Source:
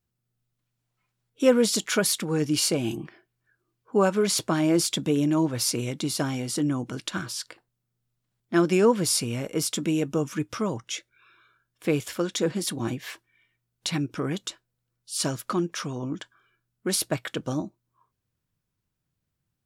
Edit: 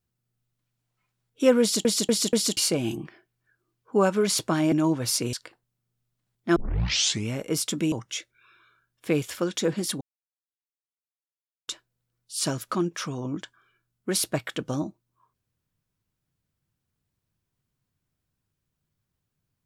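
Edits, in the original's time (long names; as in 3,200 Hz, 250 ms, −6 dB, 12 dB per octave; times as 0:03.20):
0:01.61: stutter in place 0.24 s, 4 plays
0:04.72–0:05.25: remove
0:05.86–0:07.38: remove
0:08.61: tape start 0.74 s
0:09.97–0:10.70: remove
0:12.79–0:14.46: silence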